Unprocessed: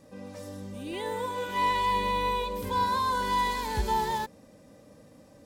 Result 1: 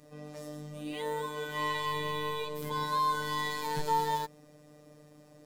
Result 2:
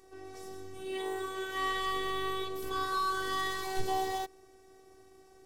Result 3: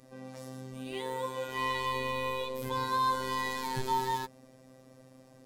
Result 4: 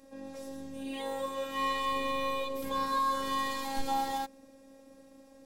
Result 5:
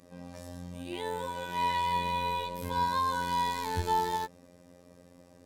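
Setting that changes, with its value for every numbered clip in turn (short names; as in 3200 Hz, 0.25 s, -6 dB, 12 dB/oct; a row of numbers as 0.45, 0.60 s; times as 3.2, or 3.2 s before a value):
robotiser, frequency: 150, 380, 130, 270, 88 Hz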